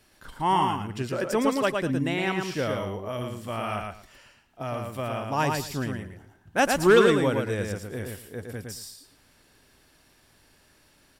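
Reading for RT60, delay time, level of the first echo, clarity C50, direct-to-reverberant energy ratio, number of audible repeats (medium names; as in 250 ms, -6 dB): no reverb, 112 ms, -4.0 dB, no reverb, no reverb, 3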